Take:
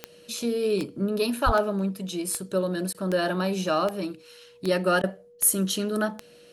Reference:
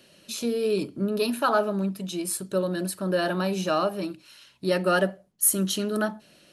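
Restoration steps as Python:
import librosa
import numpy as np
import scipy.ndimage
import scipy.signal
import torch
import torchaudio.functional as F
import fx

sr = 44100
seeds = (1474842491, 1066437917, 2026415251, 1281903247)

y = fx.fix_declick_ar(x, sr, threshold=10.0)
y = fx.notch(y, sr, hz=480.0, q=30.0)
y = fx.fix_deplosive(y, sr, at_s=(1.45,))
y = fx.fix_interpolate(y, sr, at_s=(2.93, 5.02), length_ms=14.0)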